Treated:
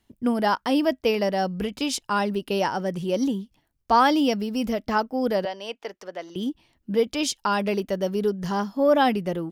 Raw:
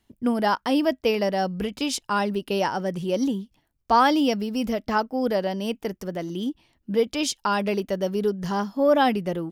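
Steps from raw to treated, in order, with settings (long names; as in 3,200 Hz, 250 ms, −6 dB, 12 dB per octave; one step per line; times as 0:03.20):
0:05.45–0:06.36: three-way crossover with the lows and the highs turned down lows −22 dB, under 440 Hz, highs −18 dB, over 6,600 Hz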